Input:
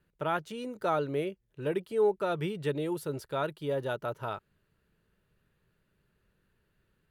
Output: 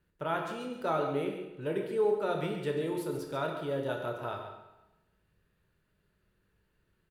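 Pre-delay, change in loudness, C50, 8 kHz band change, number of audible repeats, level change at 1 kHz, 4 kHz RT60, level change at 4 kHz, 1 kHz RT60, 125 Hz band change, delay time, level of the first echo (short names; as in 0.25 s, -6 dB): 22 ms, -1.0 dB, 4.0 dB, -1.0 dB, 1, -1.0 dB, 0.90 s, -1.0 dB, 0.95 s, -2.0 dB, 0.137 s, -9.5 dB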